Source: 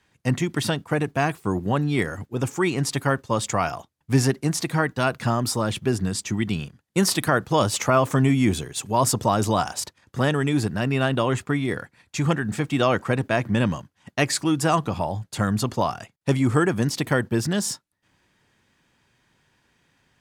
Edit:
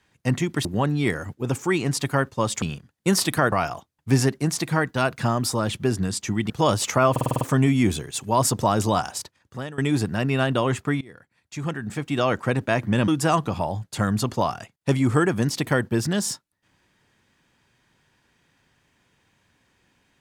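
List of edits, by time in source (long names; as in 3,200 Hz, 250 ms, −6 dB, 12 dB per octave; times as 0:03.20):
0:00.65–0:01.57: remove
0:06.52–0:07.42: move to 0:03.54
0:08.03: stutter 0.05 s, 7 plays
0:09.57–0:10.40: fade out, to −18.5 dB
0:11.63–0:13.18: fade in, from −23.5 dB
0:13.70–0:14.48: remove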